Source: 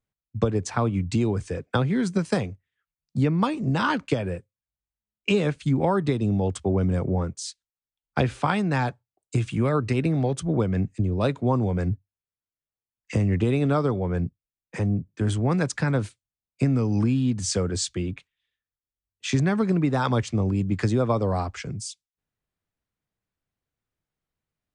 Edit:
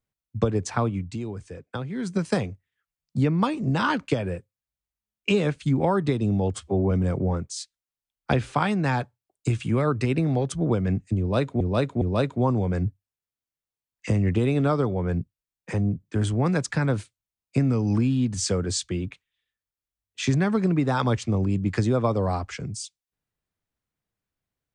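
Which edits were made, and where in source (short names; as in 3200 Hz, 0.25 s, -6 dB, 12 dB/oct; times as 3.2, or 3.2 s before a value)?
0.8–2.25 dip -9 dB, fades 0.33 s
6.54–6.79 stretch 1.5×
11.07–11.48 loop, 3 plays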